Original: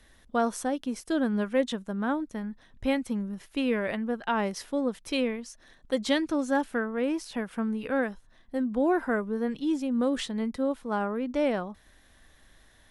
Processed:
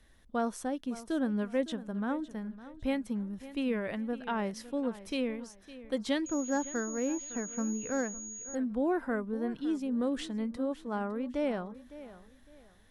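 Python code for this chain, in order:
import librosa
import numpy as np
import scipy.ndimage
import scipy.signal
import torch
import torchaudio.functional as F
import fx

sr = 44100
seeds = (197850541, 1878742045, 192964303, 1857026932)

y = fx.low_shelf(x, sr, hz=360.0, db=4.5)
y = fx.echo_feedback(y, sr, ms=558, feedback_pct=28, wet_db=-16)
y = fx.pwm(y, sr, carrier_hz=6700.0, at=(6.26, 8.55))
y = y * 10.0 ** (-7.0 / 20.0)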